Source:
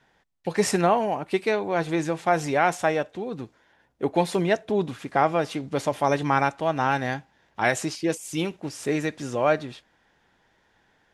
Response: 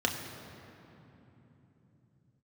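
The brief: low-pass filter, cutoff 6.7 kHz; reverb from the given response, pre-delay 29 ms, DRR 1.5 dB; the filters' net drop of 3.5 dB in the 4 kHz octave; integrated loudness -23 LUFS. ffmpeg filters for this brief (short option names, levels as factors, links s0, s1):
-filter_complex "[0:a]lowpass=6700,equalizer=f=4000:t=o:g=-4,asplit=2[s0][s1];[1:a]atrim=start_sample=2205,adelay=29[s2];[s1][s2]afir=irnorm=-1:irlink=0,volume=0.299[s3];[s0][s3]amix=inputs=2:normalize=0"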